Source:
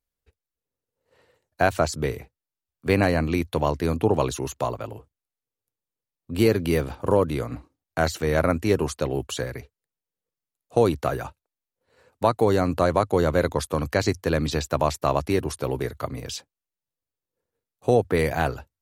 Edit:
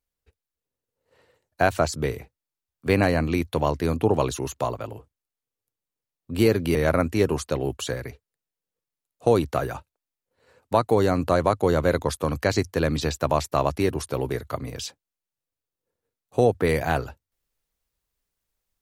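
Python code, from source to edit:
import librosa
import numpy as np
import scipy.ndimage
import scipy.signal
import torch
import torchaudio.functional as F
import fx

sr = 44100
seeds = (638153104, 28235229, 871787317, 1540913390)

y = fx.edit(x, sr, fx.cut(start_s=6.75, length_s=1.5), tone=tone)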